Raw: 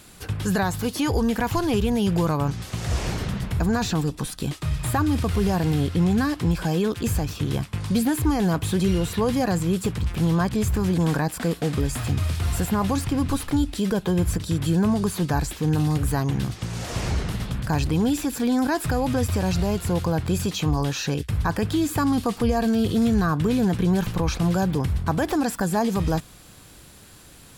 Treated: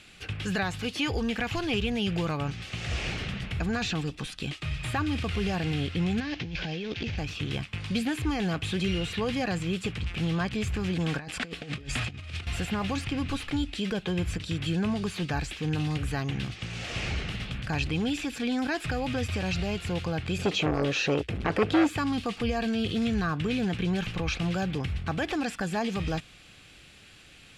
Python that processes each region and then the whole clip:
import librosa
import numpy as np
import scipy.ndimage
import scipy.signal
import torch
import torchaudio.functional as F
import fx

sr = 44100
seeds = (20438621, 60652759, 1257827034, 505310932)

y = fx.chain(x, sr, fx.cvsd(bps=32000),
    fx.over_compress(threshold_db=-26.0, ratio=-1.0),
    fx.peak_eq(hz=1200.0, db=-8.0, octaves=0.5), at=(6.2, 7.18))
y = fx.chain(y, sr, fx.lowpass(hz=11000.0, slope=12),
    fx.over_compress(threshold_db=-28.0, ratio=-0.5), at=(11.18, 12.47))
y = fx.chain(y, sr, fx.peak_eq(hz=430.0, db=14.0, octaves=1.8),
    fx.transformer_sat(knee_hz=650.0), at=(20.38, 21.89))
y = scipy.signal.sosfilt(scipy.signal.butter(2, 7300.0, 'lowpass', fs=sr, output='sos'), y)
y = fx.peak_eq(y, sr, hz=2600.0, db=13.0, octaves=1.1)
y = fx.notch(y, sr, hz=980.0, q=7.1)
y = F.gain(torch.from_numpy(y), -7.5).numpy()